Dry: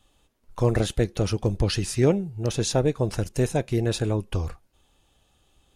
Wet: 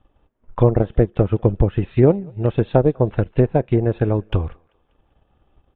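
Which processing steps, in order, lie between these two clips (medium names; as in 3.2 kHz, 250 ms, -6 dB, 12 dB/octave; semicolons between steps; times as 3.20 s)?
level-controlled noise filter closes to 1.4 kHz, open at -22 dBFS; resampled via 8 kHz; low-pass that closes with the level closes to 1.1 kHz, closed at -19 dBFS; thinning echo 195 ms, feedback 42%, high-pass 390 Hz, level -20 dB; transient shaper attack +4 dB, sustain -7 dB; trim +5 dB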